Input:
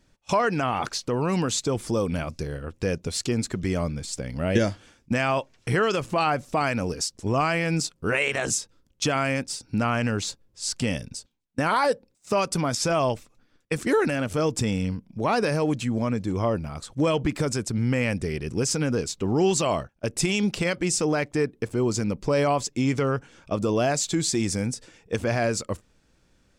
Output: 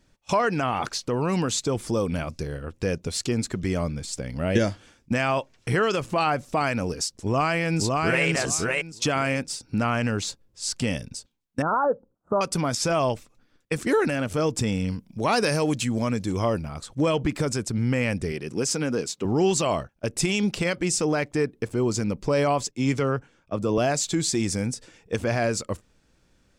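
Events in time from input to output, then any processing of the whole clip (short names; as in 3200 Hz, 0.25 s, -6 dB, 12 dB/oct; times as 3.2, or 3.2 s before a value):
7.2–8.25 echo throw 0.56 s, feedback 20%, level -2 dB
11.62–12.41 elliptic low-pass 1400 Hz
14.88–16.62 high shelf 3100 Hz +9.5 dB
18.32–19.25 HPF 170 Hz
22.71–23.78 three-band expander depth 100%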